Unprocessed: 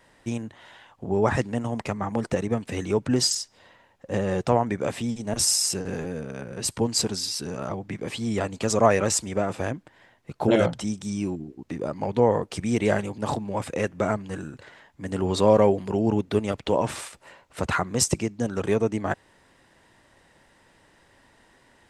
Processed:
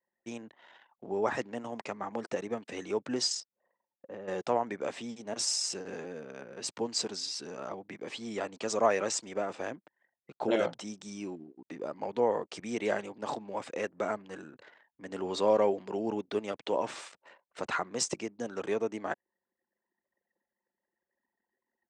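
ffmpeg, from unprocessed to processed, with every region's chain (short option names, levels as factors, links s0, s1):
-filter_complex "[0:a]asettb=1/sr,asplit=3[s0][s1][s2];[s0]atrim=end=3.404[s3];[s1]atrim=start=3.4:end=4.28,asetpts=PTS-STARTPTS,afade=t=in:d=0.004:c=qsin,afade=t=out:st=0.876:d=0.004:c=qsin,lowpass=f=1600:p=1,acompressor=threshold=0.0251:ratio=2.5:attack=3.2:release=140:knee=1:detection=peak[s4];[s2]atrim=start=4.276[s5];[s3][s4]acrossfade=d=0.004:c1=hsin:c2=qsin[s6];[s6][s5]acrossfade=d=0.004:c1=qsin:c2=hsin,lowpass=f=7400:w=0.5412,lowpass=f=7400:w=1.3066,anlmdn=0.01,highpass=300,volume=0.473"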